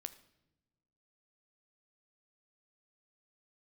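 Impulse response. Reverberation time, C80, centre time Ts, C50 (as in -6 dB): no single decay rate, 17.5 dB, 5 ms, 15.5 dB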